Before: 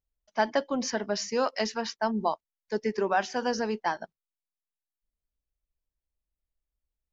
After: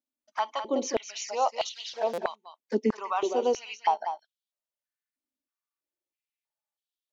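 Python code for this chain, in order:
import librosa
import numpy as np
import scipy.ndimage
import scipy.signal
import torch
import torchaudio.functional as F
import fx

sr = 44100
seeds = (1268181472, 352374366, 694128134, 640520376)

y = fx.delta_mod(x, sr, bps=32000, step_db=-41.5, at=(1.69, 2.15))
y = fx.env_flanger(y, sr, rest_ms=3.4, full_db=-27.0)
y = y + 10.0 ** (-9.0 / 20.0) * np.pad(y, (int(203 * sr / 1000.0), 0))[:len(y)]
y = fx.buffer_glitch(y, sr, at_s=(2.13,), block=256, repeats=8)
y = fx.filter_held_highpass(y, sr, hz=3.1, low_hz=260.0, high_hz=3400.0)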